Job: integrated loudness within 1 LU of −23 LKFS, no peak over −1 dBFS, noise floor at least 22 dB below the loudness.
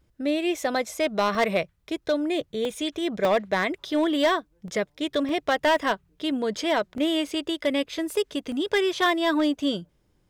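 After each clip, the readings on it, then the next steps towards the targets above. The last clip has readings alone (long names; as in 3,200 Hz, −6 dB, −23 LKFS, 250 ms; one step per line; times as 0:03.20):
share of clipped samples 0.9%; peaks flattened at −15.5 dBFS; number of dropouts 7; longest dropout 1.3 ms; integrated loudness −25.5 LKFS; sample peak −15.5 dBFS; target loudness −23.0 LKFS
→ clipped peaks rebuilt −15.5 dBFS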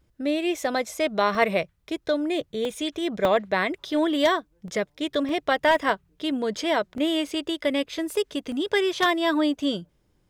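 share of clipped samples 0.0%; number of dropouts 7; longest dropout 1.3 ms
→ repair the gap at 0:01.35/0:02.65/0:03.25/0:04.68/0:05.29/0:06.98/0:08.52, 1.3 ms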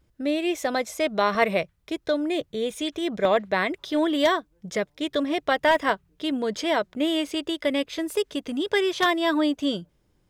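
number of dropouts 0; integrated loudness −25.0 LKFS; sample peak −6.5 dBFS; target loudness −23.0 LKFS
→ level +2 dB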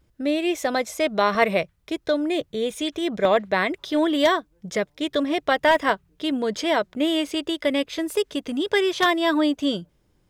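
integrated loudness −23.0 LKFS; sample peak −4.5 dBFS; background noise floor −65 dBFS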